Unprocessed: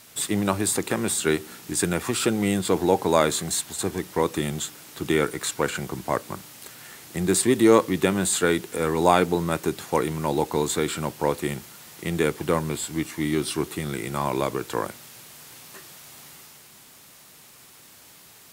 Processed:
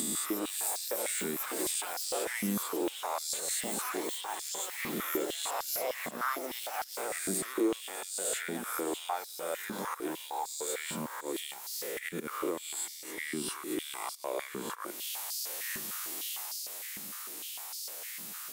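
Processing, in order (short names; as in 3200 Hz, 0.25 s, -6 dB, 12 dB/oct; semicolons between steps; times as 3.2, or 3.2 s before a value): spectral swells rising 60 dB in 0.99 s; echoes that change speed 0.221 s, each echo +7 st, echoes 3, each echo -6 dB; in parallel at -6.5 dB: soft clip -11.5 dBFS, distortion -15 dB; on the sum: auto swell 0.161 s; compressor 4:1, threshold -34 dBFS, peak gain reduction 21.5 dB; high shelf 7400 Hz +11 dB; on a send: thin delay 0.602 s, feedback 47%, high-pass 1800 Hz, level -11.5 dB; on the sum: stepped high-pass 6.6 Hz 210–4800 Hz; gain -5.5 dB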